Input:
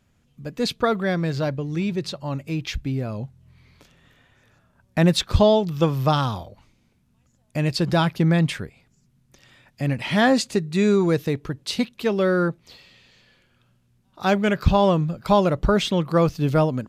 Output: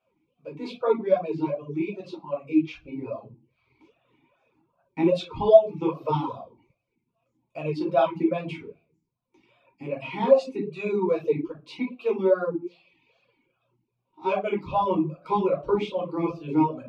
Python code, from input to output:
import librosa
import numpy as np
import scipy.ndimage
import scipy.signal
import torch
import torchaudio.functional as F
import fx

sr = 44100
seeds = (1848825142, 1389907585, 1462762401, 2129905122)

y = fx.room_shoebox(x, sr, seeds[0], volume_m3=280.0, walls='furnished', distance_m=4.5)
y = fx.dereverb_blind(y, sr, rt60_s=0.7)
y = fx.vowel_sweep(y, sr, vowels='a-u', hz=2.5)